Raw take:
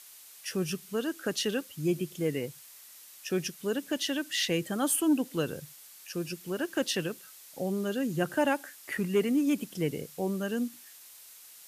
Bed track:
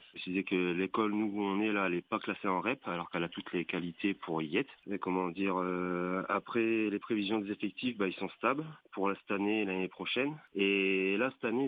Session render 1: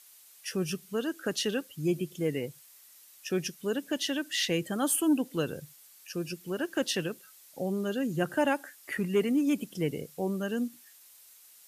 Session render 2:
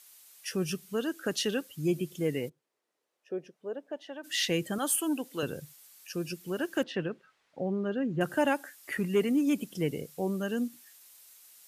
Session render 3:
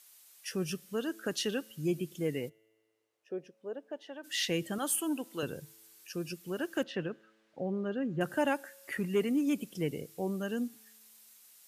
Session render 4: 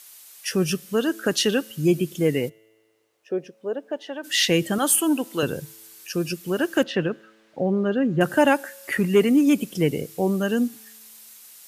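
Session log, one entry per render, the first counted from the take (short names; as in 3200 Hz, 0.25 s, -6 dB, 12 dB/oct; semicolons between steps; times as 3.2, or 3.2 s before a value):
denoiser 6 dB, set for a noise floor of -52 dBFS
2.48–4.23 band-pass 330 Hz -> 800 Hz, Q 2.1; 4.78–5.43 HPF 490 Hz 6 dB/oct; 6.83–8.21 LPF 2000 Hz
resonator 110 Hz, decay 1.8 s, mix 30%
gain +12 dB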